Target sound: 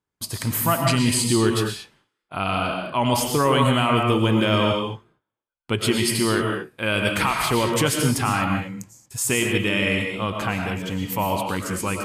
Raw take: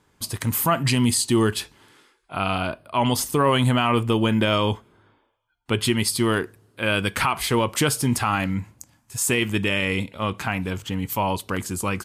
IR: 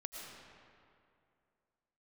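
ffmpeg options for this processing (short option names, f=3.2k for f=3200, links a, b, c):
-filter_complex "[0:a]agate=range=-22dB:threshold=-49dB:ratio=16:detection=peak[a];[1:a]atrim=start_sample=2205,afade=t=out:st=0.29:d=0.01,atrim=end_sample=13230[b];[a][b]afir=irnorm=-1:irlink=0,volume=4dB"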